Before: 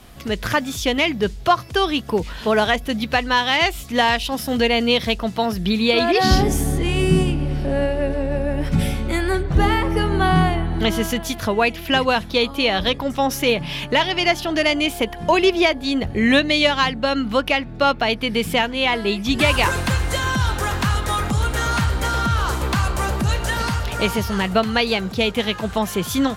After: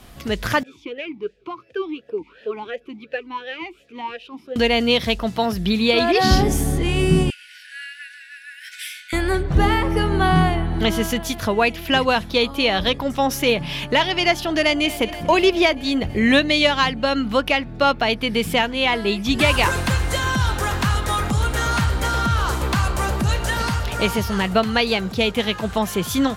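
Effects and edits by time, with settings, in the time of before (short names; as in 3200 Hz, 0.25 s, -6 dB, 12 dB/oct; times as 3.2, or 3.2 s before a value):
0.63–4.56 vowel sweep e-u 2.8 Hz
7.3–9.13 brick-wall FIR high-pass 1400 Hz
14.6–15.02 echo throw 0.24 s, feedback 75%, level -16 dB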